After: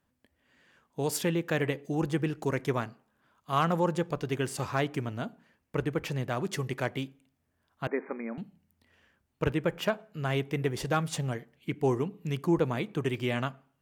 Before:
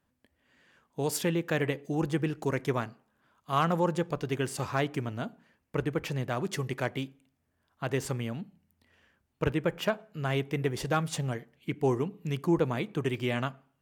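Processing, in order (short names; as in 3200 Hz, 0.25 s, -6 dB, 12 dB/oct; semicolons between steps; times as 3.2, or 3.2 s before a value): 7.87–8.38 brick-wall FIR band-pass 190–2500 Hz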